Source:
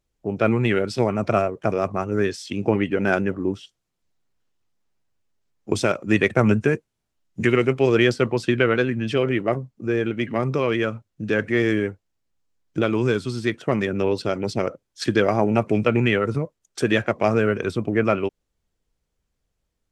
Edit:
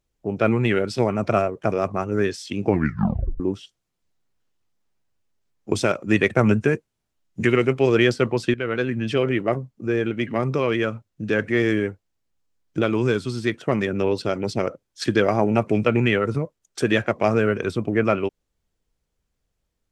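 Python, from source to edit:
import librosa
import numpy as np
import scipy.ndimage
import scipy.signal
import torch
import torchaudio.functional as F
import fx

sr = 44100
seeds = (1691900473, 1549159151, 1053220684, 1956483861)

y = fx.edit(x, sr, fx.tape_stop(start_s=2.67, length_s=0.73),
    fx.fade_in_from(start_s=8.54, length_s=0.43, floor_db=-13.0), tone=tone)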